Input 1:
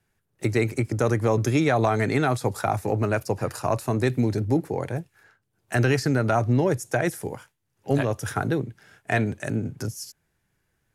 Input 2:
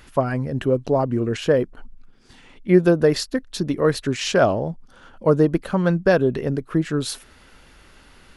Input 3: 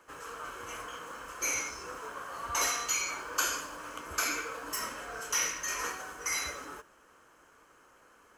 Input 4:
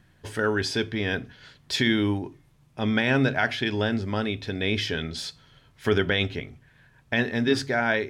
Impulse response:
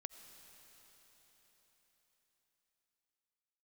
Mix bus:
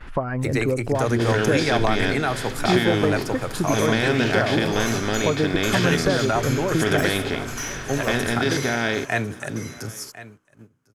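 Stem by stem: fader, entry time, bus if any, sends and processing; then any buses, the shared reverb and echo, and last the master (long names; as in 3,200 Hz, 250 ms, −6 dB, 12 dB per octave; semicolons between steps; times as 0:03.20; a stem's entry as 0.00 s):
−0.5 dB, 0.00 s, no send, echo send −16.5 dB, tilt shelving filter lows −3 dB, about 700 Hz; hum removal 62.98 Hz, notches 8
−2.5 dB, 0.00 s, no send, no echo send, parametric band 1,500 Hz +13.5 dB 2.9 octaves; downward compressor 2.5 to 1, threshold −27 dBFS, peak gain reduction 16 dB; spectral tilt −3 dB per octave
−1.5 dB, 2.25 s, no send, echo send −6.5 dB, soft clipping −20 dBFS, distortion −23 dB
−4.5 dB, 0.95 s, no send, echo send −22 dB, compressor on every frequency bin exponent 0.4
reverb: not used
echo: single-tap delay 1,050 ms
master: noise gate −44 dBFS, range −13 dB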